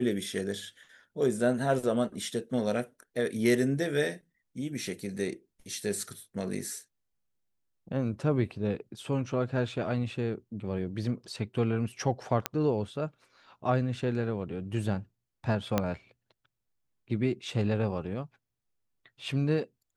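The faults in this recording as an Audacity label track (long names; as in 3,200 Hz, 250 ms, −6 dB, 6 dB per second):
12.460000	12.460000	click −10 dBFS
15.780000	15.780000	click −11 dBFS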